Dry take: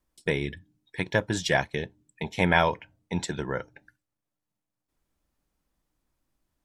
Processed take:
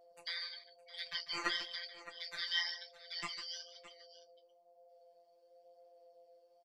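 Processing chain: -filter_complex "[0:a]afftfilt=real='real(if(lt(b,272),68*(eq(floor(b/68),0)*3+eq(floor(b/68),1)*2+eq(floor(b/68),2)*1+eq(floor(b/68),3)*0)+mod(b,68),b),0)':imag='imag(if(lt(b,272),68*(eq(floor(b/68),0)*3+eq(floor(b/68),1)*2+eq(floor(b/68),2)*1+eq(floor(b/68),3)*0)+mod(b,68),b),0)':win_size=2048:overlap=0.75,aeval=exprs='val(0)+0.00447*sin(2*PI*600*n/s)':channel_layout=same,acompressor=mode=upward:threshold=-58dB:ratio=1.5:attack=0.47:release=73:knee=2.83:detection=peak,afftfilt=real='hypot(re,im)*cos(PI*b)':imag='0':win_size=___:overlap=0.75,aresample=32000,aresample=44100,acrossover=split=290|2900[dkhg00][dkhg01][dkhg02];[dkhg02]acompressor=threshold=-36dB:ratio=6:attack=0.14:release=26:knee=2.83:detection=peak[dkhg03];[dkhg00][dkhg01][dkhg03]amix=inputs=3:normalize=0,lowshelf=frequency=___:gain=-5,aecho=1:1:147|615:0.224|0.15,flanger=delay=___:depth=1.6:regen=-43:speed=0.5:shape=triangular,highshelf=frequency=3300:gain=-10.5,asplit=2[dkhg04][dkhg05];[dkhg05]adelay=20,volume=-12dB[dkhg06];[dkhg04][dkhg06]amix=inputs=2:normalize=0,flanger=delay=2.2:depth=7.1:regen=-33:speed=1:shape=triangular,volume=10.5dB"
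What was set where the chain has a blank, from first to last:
1024, 230, 5.7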